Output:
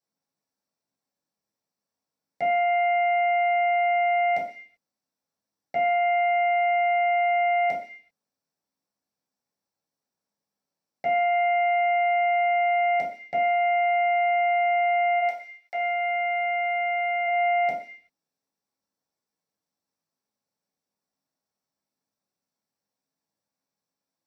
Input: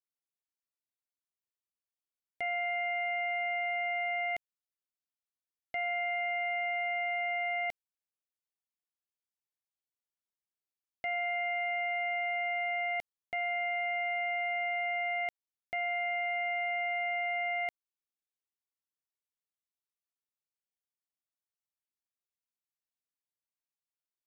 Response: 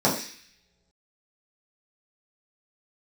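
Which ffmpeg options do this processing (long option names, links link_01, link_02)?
-filter_complex "[0:a]asplit=3[link_01][link_02][link_03];[link_01]afade=type=out:start_time=15.19:duration=0.02[link_04];[link_02]highpass=830,afade=type=in:start_time=15.19:duration=0.02,afade=type=out:start_time=17.25:duration=0.02[link_05];[link_03]afade=type=in:start_time=17.25:duration=0.02[link_06];[link_04][link_05][link_06]amix=inputs=3:normalize=0[link_07];[1:a]atrim=start_sample=2205,afade=type=out:start_time=0.45:duration=0.01,atrim=end_sample=20286[link_08];[link_07][link_08]afir=irnorm=-1:irlink=0,volume=-5.5dB"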